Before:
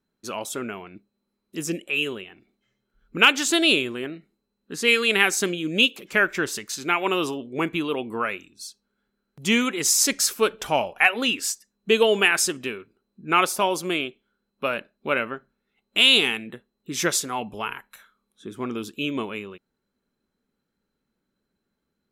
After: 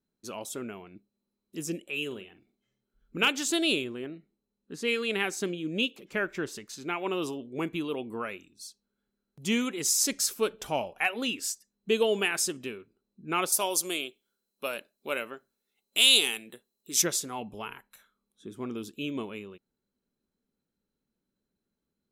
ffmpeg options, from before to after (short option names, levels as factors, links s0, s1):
-filter_complex "[0:a]asettb=1/sr,asplit=3[s0][s1][s2];[s0]atrim=end=2.064[s3];[s1]atrim=start=2.06:end=3.28,asetpts=PTS-STARTPTS,afade=t=in:d=0.004:c=qsin,afade=t=out:st=1.216:d=0.004:c=qsin,asplit=2[s4][s5];[s5]adelay=46,volume=0.266[s6];[s4][s6]amix=inputs=2:normalize=0,atrim=end_sample=53802[s7];[s2]atrim=start=3.276[s8];[s3][s7]acrossfade=d=0.004:c1=hsin:c2=qsin[s9];[s9][s8]acrossfade=d=0.004:c1=qsin:c2=hsin,asettb=1/sr,asplit=3[s10][s11][s12];[s10]atrim=end=3.844[s13];[s11]atrim=start=3.84:end=7.22,asetpts=PTS-STARTPTS,afade=t=in:d=0.004:c=qsin,afade=t=out:st=3.376:d=0.004:c=qsin,highshelf=f=4800:g=-9[s14];[s12]atrim=start=7.216[s15];[s13][s14]acrossfade=d=0.004:c1=hsin:c2=qsin[s16];[s16][s15]acrossfade=d=0.004:c1=qsin:c2=hsin,asettb=1/sr,asplit=3[s17][s18][s19];[s17]atrim=end=13.524[s20];[s18]atrim=start=13.52:end=17.02,asetpts=PTS-STARTPTS,afade=t=in:d=0.004:c=qsin,afade=t=out:st=3.496:d=0.004:c=qsin,bass=f=250:g=-12,treble=f=4000:g=14[s21];[s19]atrim=start=17.016[s22];[s20][s21]acrossfade=d=0.004:c1=hsin:c2=qsin[s23];[s23][s22]acrossfade=d=0.004:c1=qsin:c2=hsin,equalizer=f=1600:w=0.61:g=-6,volume=0.562"